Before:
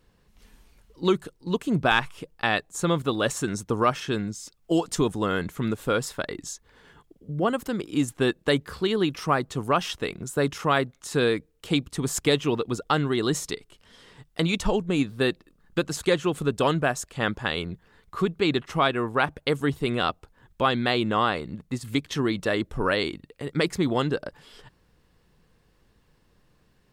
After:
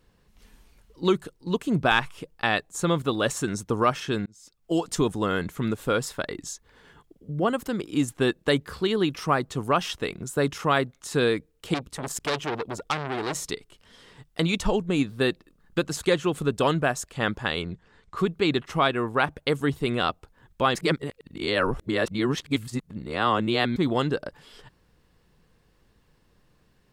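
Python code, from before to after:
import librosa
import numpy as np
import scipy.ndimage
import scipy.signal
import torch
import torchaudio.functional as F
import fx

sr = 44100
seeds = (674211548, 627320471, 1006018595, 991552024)

y = fx.transformer_sat(x, sr, knee_hz=2900.0, at=(11.74, 13.41))
y = fx.steep_lowpass(y, sr, hz=8700.0, slope=36, at=(17.62, 18.17))
y = fx.edit(y, sr, fx.fade_in_span(start_s=4.26, length_s=0.84, curve='qsin'),
    fx.reverse_span(start_s=20.75, length_s=3.01), tone=tone)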